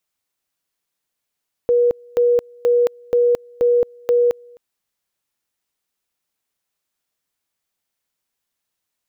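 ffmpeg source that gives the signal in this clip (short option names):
-f lavfi -i "aevalsrc='pow(10,(-11.5-29*gte(mod(t,0.48),0.22))/20)*sin(2*PI*482*t)':d=2.88:s=44100"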